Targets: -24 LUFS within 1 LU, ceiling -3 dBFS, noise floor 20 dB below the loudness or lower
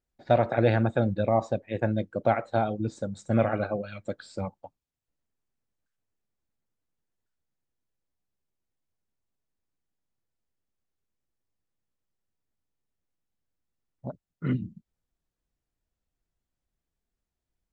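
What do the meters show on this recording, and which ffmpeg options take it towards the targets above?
loudness -28.0 LUFS; peak -9.0 dBFS; loudness target -24.0 LUFS
-> -af "volume=4dB"

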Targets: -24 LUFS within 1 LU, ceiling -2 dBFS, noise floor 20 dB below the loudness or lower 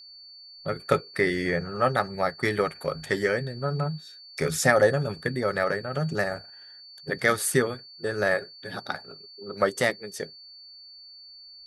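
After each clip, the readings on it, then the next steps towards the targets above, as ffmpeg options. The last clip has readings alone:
steady tone 4500 Hz; tone level -45 dBFS; loudness -26.5 LUFS; peak -6.0 dBFS; loudness target -24.0 LUFS
-> -af "bandreject=f=4.5k:w=30"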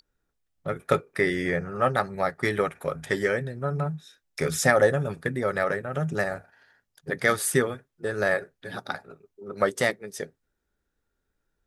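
steady tone none; loudness -26.5 LUFS; peak -6.0 dBFS; loudness target -24.0 LUFS
-> -af "volume=2.5dB"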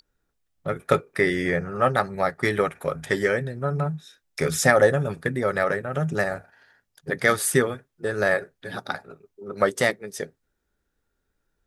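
loudness -24.0 LUFS; peak -3.5 dBFS; noise floor -77 dBFS

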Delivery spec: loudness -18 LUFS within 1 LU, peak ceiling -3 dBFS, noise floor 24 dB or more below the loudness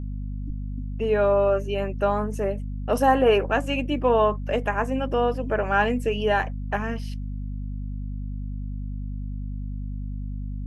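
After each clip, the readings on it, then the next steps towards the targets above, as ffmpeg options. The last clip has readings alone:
hum 50 Hz; harmonics up to 250 Hz; hum level -28 dBFS; loudness -25.5 LUFS; peak -7.0 dBFS; loudness target -18.0 LUFS
-> -af "bandreject=f=50:t=h:w=6,bandreject=f=100:t=h:w=6,bandreject=f=150:t=h:w=6,bandreject=f=200:t=h:w=6,bandreject=f=250:t=h:w=6"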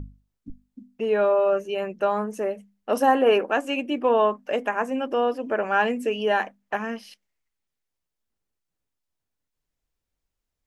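hum none; loudness -24.0 LUFS; peak -8.0 dBFS; loudness target -18.0 LUFS
-> -af "volume=6dB,alimiter=limit=-3dB:level=0:latency=1"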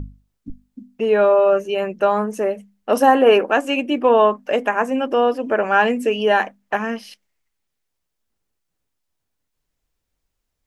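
loudness -18.0 LUFS; peak -3.0 dBFS; noise floor -77 dBFS

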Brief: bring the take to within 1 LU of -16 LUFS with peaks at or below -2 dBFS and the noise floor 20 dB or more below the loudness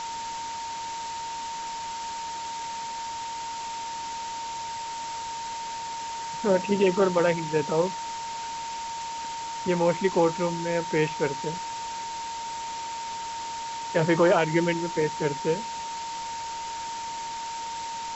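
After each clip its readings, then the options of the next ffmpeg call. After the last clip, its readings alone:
steady tone 920 Hz; tone level -32 dBFS; noise floor -34 dBFS; noise floor target -49 dBFS; loudness -28.5 LUFS; peak -9.5 dBFS; loudness target -16.0 LUFS
-> -af "bandreject=f=920:w=30"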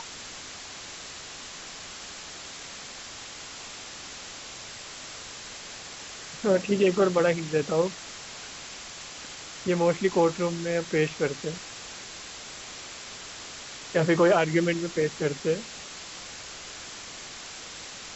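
steady tone none; noise floor -42 dBFS; noise floor target -50 dBFS
-> -af "afftdn=nr=8:nf=-42"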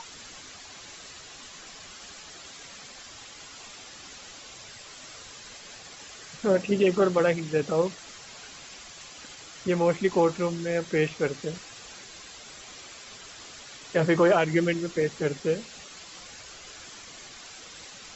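noise floor -46 dBFS; loudness -25.5 LUFS; peak -10.0 dBFS; loudness target -16.0 LUFS
-> -af "volume=9.5dB,alimiter=limit=-2dB:level=0:latency=1"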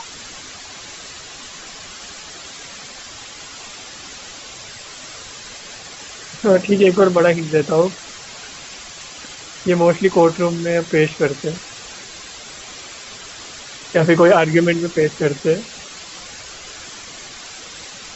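loudness -16.0 LUFS; peak -2.0 dBFS; noise floor -37 dBFS

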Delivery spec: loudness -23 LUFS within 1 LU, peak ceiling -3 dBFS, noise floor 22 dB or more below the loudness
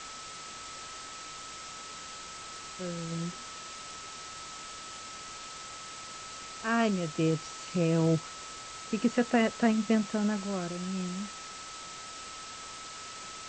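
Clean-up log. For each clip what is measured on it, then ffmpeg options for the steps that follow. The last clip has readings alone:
steady tone 1300 Hz; tone level -46 dBFS; noise floor -44 dBFS; noise floor target -56 dBFS; loudness -34.0 LUFS; peak -14.0 dBFS; loudness target -23.0 LUFS
-> -af "bandreject=f=1.3k:w=30"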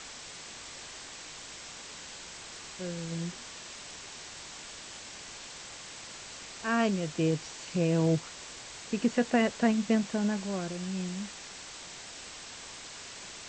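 steady tone none; noise floor -46 dBFS; noise floor target -56 dBFS
-> -af "afftdn=nr=10:nf=-46"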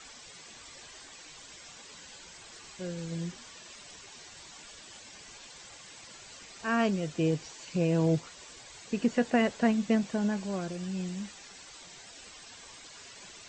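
noise floor -50 dBFS; noise floor target -53 dBFS
-> -af "afftdn=nr=6:nf=-50"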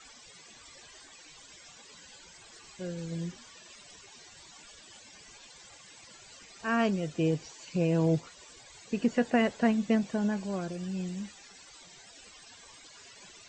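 noise floor -54 dBFS; loudness -30.5 LUFS; peak -14.0 dBFS; loudness target -23.0 LUFS
-> -af "volume=7.5dB"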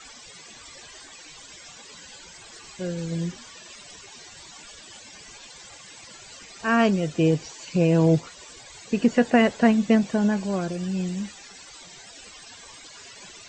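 loudness -23.0 LUFS; peak -6.5 dBFS; noise floor -46 dBFS

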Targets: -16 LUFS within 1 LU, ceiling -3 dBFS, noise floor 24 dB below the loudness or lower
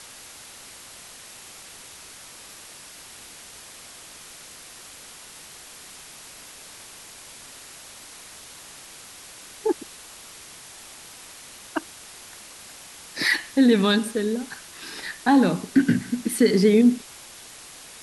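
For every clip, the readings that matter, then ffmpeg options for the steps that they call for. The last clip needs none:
noise floor -44 dBFS; noise floor target -46 dBFS; loudness -22.0 LUFS; peak -7.0 dBFS; loudness target -16.0 LUFS
-> -af "afftdn=nr=6:nf=-44"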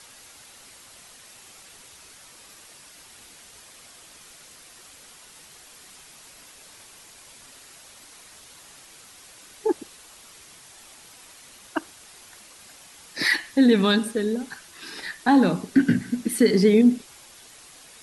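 noise floor -49 dBFS; loudness -22.0 LUFS; peak -7.0 dBFS; loudness target -16.0 LUFS
-> -af "volume=6dB,alimiter=limit=-3dB:level=0:latency=1"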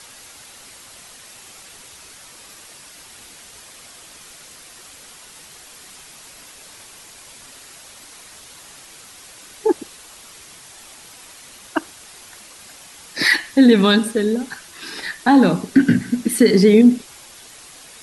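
loudness -16.0 LUFS; peak -3.0 dBFS; noise floor -43 dBFS

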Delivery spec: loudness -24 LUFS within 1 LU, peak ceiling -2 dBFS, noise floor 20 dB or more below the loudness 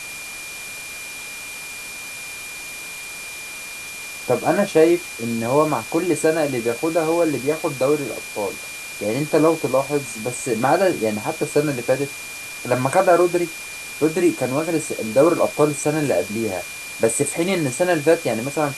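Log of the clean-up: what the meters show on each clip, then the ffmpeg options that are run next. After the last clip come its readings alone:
steady tone 2400 Hz; tone level -33 dBFS; noise floor -34 dBFS; noise floor target -42 dBFS; loudness -21.5 LUFS; peak -3.0 dBFS; loudness target -24.0 LUFS
-> -af "bandreject=f=2.4k:w=30"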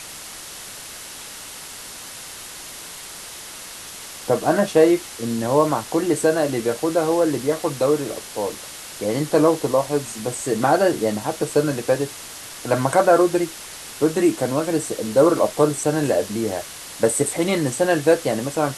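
steady tone none; noise floor -37 dBFS; noise floor target -41 dBFS
-> -af "afftdn=nr=6:nf=-37"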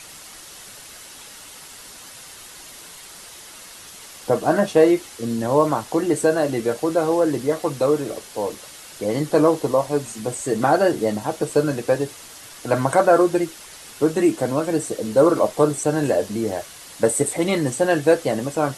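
noise floor -41 dBFS; loudness -20.5 LUFS; peak -3.5 dBFS; loudness target -24.0 LUFS
-> -af "volume=-3.5dB"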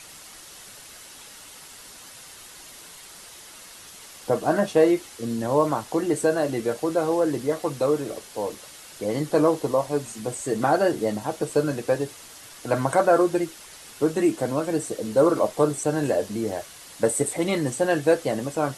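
loudness -24.0 LUFS; peak -7.0 dBFS; noise floor -45 dBFS

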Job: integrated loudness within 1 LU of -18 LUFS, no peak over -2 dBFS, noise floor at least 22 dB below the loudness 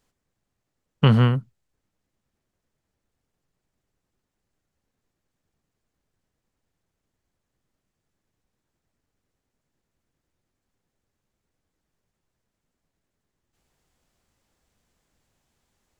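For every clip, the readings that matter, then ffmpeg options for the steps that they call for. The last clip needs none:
loudness -20.0 LUFS; peak -3.0 dBFS; loudness target -18.0 LUFS
-> -af "volume=2dB,alimiter=limit=-2dB:level=0:latency=1"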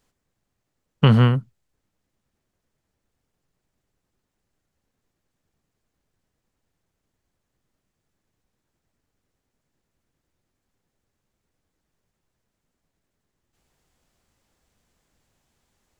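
loudness -18.5 LUFS; peak -2.0 dBFS; noise floor -79 dBFS

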